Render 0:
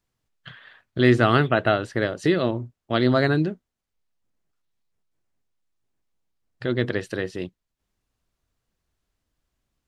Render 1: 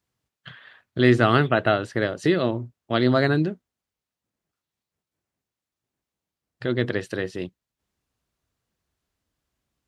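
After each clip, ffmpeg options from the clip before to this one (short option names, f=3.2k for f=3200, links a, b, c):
-af "highpass=62"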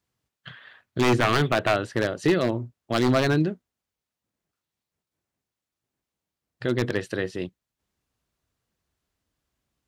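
-af "aeval=exprs='0.224*(abs(mod(val(0)/0.224+3,4)-2)-1)':c=same"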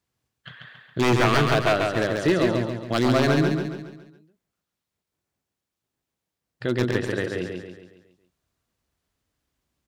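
-af "aecho=1:1:138|276|414|552|690|828:0.631|0.297|0.139|0.0655|0.0308|0.0145"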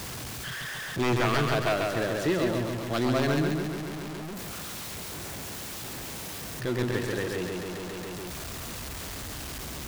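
-af "aeval=exprs='val(0)+0.5*0.0668*sgn(val(0))':c=same,volume=-7.5dB"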